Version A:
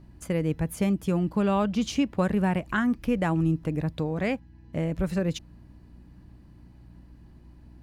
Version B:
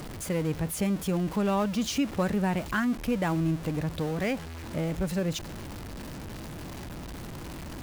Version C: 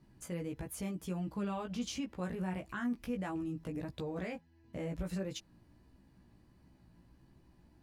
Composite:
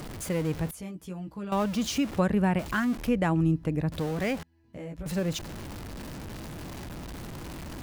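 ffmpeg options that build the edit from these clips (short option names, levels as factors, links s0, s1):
-filter_complex "[2:a]asplit=2[s0][s1];[0:a]asplit=2[s2][s3];[1:a]asplit=5[s4][s5][s6][s7][s8];[s4]atrim=end=0.712[s9];[s0]atrim=start=0.708:end=1.522[s10];[s5]atrim=start=1.518:end=2.192[s11];[s2]atrim=start=2.188:end=2.592[s12];[s6]atrim=start=2.588:end=3.092[s13];[s3]atrim=start=3.088:end=3.922[s14];[s7]atrim=start=3.918:end=4.432[s15];[s1]atrim=start=4.428:end=5.062[s16];[s8]atrim=start=5.058[s17];[s9][s10]acrossfade=d=0.004:c1=hsin:c2=hsin[s18];[s18][s11]acrossfade=d=0.004:c1=hsin:c2=hsin[s19];[s19][s12]acrossfade=d=0.004:c1=hsin:c2=hsin[s20];[s20][s13]acrossfade=d=0.004:c1=hsin:c2=hsin[s21];[s21][s14]acrossfade=d=0.004:c1=hsin:c2=hsin[s22];[s22][s15]acrossfade=d=0.004:c1=hsin:c2=hsin[s23];[s23][s16]acrossfade=d=0.004:c1=hsin:c2=hsin[s24];[s24][s17]acrossfade=d=0.004:c1=hsin:c2=hsin"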